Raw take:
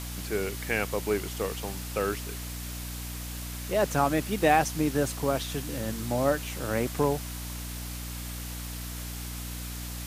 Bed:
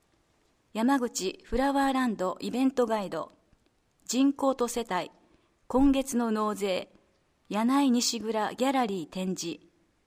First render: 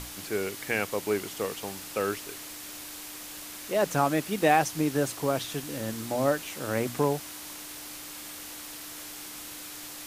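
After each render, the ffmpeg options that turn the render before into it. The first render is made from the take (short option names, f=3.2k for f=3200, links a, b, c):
-af "bandreject=f=60:t=h:w=6,bandreject=f=120:t=h:w=6,bandreject=f=180:t=h:w=6,bandreject=f=240:t=h:w=6"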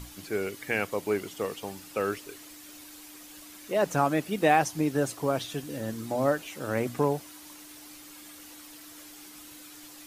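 -af "afftdn=nr=9:nf=-42"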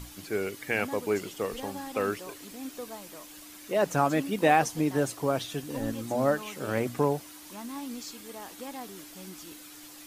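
-filter_complex "[1:a]volume=-14.5dB[a];[0:a][a]amix=inputs=2:normalize=0"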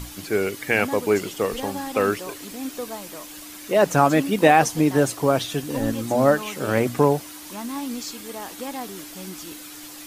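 -af "volume=8dB,alimiter=limit=-3dB:level=0:latency=1"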